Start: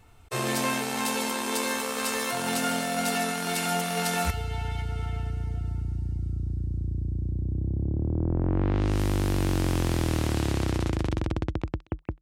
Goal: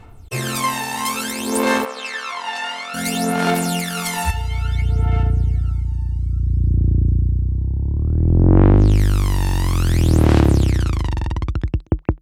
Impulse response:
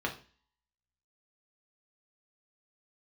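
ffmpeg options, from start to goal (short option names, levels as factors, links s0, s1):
-filter_complex "[0:a]aphaser=in_gain=1:out_gain=1:delay=1.1:decay=0.74:speed=0.58:type=sinusoidal,asplit=3[s0][s1][s2];[s0]afade=t=out:st=1.84:d=0.02[s3];[s1]highpass=660,lowpass=3700,afade=t=in:st=1.84:d=0.02,afade=t=out:st=2.93:d=0.02[s4];[s2]afade=t=in:st=2.93:d=0.02[s5];[s3][s4][s5]amix=inputs=3:normalize=0,volume=1.33"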